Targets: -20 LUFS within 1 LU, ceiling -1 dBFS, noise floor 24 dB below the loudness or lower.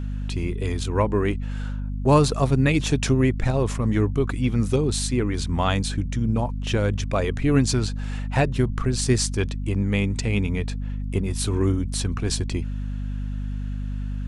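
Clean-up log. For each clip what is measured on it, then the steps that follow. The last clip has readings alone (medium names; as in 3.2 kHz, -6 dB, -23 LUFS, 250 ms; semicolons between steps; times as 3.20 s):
hum 50 Hz; highest harmonic 250 Hz; hum level -25 dBFS; loudness -24.0 LUFS; peak level -5.5 dBFS; loudness target -20.0 LUFS
-> hum notches 50/100/150/200/250 Hz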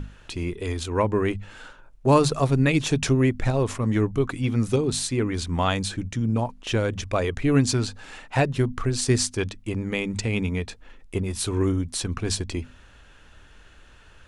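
hum not found; loudness -24.5 LUFS; peak level -6.0 dBFS; loudness target -20.0 LUFS
-> trim +4.5 dB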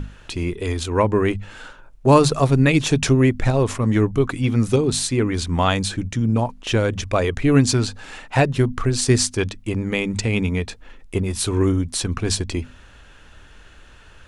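loudness -20.0 LUFS; peak level -1.5 dBFS; noise floor -46 dBFS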